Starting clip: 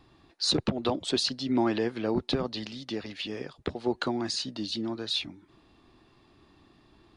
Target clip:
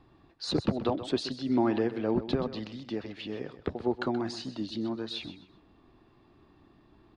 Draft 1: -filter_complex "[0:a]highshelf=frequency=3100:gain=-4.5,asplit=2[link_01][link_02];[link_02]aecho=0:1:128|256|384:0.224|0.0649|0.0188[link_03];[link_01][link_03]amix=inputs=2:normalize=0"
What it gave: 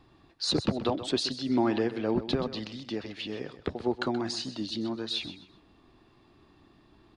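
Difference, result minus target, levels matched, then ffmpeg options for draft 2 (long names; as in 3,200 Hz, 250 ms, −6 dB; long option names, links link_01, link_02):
8,000 Hz band +7.0 dB
-filter_complex "[0:a]highshelf=frequency=3100:gain=-14,asplit=2[link_01][link_02];[link_02]aecho=0:1:128|256|384:0.224|0.0649|0.0188[link_03];[link_01][link_03]amix=inputs=2:normalize=0"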